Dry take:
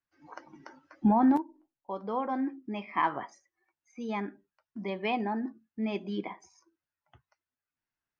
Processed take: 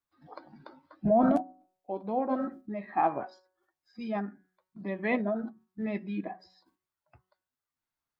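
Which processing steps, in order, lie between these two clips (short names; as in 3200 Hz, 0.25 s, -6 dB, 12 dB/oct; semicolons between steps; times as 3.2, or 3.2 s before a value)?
dynamic EQ 770 Hz, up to +5 dB, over -44 dBFS, Q 2.6; de-hum 185.5 Hz, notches 13; formant shift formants -4 st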